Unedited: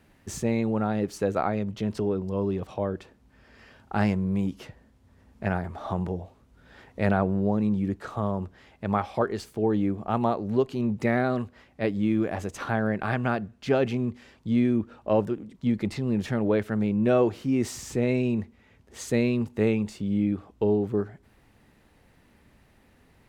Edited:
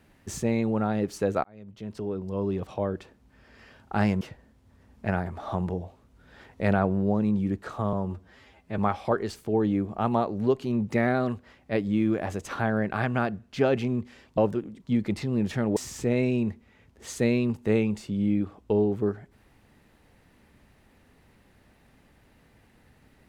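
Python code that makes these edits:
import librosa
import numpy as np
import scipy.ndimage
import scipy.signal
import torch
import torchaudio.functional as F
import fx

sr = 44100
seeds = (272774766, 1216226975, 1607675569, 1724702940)

y = fx.edit(x, sr, fx.fade_in_span(start_s=1.44, length_s=1.16),
    fx.cut(start_s=4.21, length_s=0.38),
    fx.stretch_span(start_s=8.31, length_s=0.57, factor=1.5),
    fx.cut(start_s=14.47, length_s=0.65),
    fx.cut(start_s=16.51, length_s=1.17), tone=tone)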